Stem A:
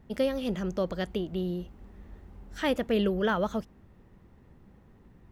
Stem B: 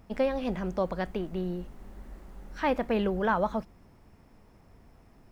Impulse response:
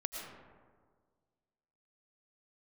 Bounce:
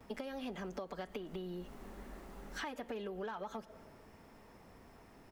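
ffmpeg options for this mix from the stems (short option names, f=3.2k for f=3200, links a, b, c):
-filter_complex "[0:a]highpass=410,aecho=1:1:4.4:0.76,asoftclip=type=tanh:threshold=-22dB,volume=-3dB,asplit=2[a][b];[b]volume=-20dB[c];[1:a]acompressor=threshold=-33dB:ratio=6,adelay=6.8,volume=2.5dB,asplit=2[d][e];[e]apad=whole_len=234674[f];[a][f]sidechaincompress=threshold=-37dB:ratio=8:attack=16:release=120[g];[2:a]atrim=start_sample=2205[h];[c][h]afir=irnorm=-1:irlink=0[i];[g][d][i]amix=inputs=3:normalize=0,lowshelf=f=160:g=-11,acompressor=threshold=-40dB:ratio=5"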